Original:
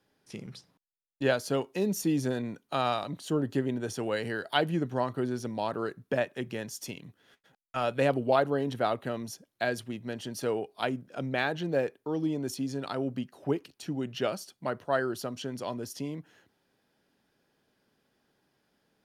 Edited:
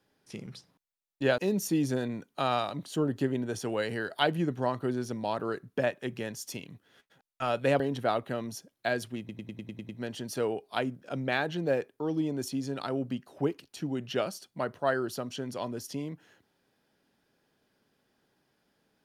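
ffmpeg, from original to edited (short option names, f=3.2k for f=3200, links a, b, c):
-filter_complex "[0:a]asplit=10[a][b][c][d][e][f][g][h][i][j];[a]atrim=end=1.382[k];[b]atrim=start=1.718:end=8.142[l];[c]atrim=start=8.558:end=10.052[m];[d]atrim=start=9.948:end=10.052[n];[e]atrim=start=9.948:end=10.052[o];[f]atrim=start=9.948:end=10.052[p];[g]atrim=start=9.948:end=10.052[q];[h]atrim=start=9.948:end=10.052[r];[i]atrim=start=9.948:end=10.052[s];[j]atrim=start=9.948[t];[k][l]acrossfade=d=0.004:c1=hsin:c2=hsin[u];[u][m]acrossfade=d=0.004:c1=hsin:c2=hsin[v];[v][n]acrossfade=d=0.004:c1=hsin:c2=hsin[w];[w][o]acrossfade=d=0.004:c1=hsin:c2=hsin[x];[x][p]acrossfade=d=0.004:c1=hsin:c2=hsin[y];[y][q]acrossfade=d=0.004:c1=hsin:c2=hsin[z];[z][r]acrossfade=d=0.004:c1=hsin:c2=hsin[aa];[aa][s]acrossfade=d=0.004:c1=hsin:c2=hsin[ab];[ab][t]acrossfade=d=0.004:c1=hsin:c2=hsin"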